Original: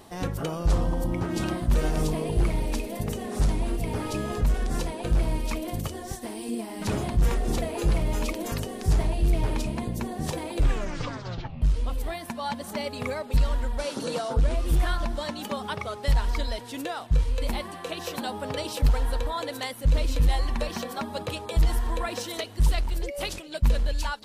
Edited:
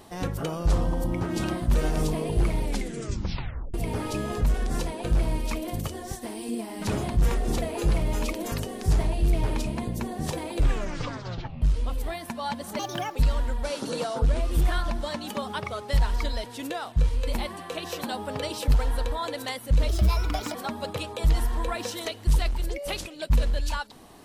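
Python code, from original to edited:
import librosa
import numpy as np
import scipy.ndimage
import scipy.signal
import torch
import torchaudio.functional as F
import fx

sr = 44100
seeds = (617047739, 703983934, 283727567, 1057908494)

y = fx.edit(x, sr, fx.tape_stop(start_s=2.64, length_s=1.1),
    fx.speed_span(start_s=12.79, length_s=0.51, speed=1.4),
    fx.speed_span(start_s=20.03, length_s=0.84, speed=1.27), tone=tone)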